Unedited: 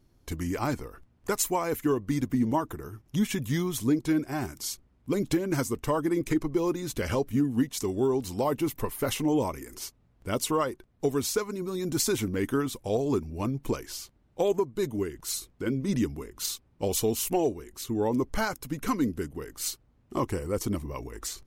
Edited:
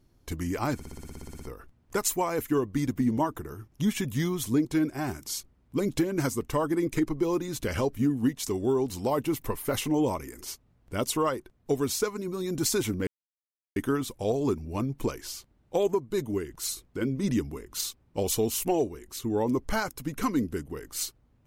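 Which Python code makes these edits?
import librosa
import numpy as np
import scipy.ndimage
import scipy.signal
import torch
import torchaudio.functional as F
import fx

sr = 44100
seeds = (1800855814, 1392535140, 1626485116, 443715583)

y = fx.edit(x, sr, fx.stutter(start_s=0.75, slice_s=0.06, count=12),
    fx.insert_silence(at_s=12.41, length_s=0.69), tone=tone)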